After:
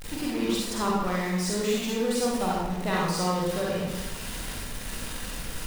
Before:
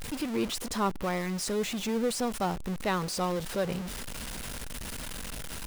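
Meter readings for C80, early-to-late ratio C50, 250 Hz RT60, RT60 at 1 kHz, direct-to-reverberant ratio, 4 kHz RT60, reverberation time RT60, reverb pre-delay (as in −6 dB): 2.0 dB, −2.5 dB, 1.1 s, 0.95 s, −5.0 dB, 0.80 s, 1.0 s, 37 ms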